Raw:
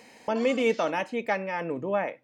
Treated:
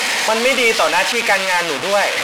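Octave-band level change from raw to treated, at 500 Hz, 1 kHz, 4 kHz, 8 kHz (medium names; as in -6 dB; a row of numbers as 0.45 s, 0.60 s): +8.5 dB, +13.5 dB, +23.5 dB, +27.5 dB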